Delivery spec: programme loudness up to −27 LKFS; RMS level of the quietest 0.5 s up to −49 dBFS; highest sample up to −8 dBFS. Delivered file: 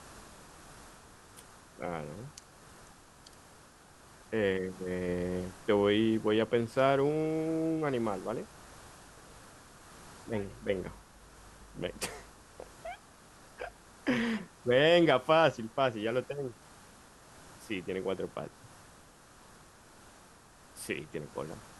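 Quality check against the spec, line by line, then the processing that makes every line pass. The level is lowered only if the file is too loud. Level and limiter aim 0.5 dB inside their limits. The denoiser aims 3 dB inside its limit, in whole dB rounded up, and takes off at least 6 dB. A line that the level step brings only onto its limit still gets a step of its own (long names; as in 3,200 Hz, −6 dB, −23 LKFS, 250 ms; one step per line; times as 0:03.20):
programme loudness −31.5 LKFS: in spec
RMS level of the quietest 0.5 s −57 dBFS: in spec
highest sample −12.5 dBFS: in spec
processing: no processing needed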